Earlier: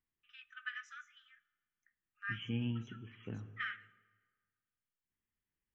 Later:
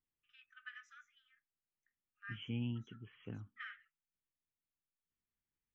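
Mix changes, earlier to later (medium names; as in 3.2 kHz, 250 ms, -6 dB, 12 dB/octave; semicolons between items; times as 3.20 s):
first voice -7.5 dB; reverb: off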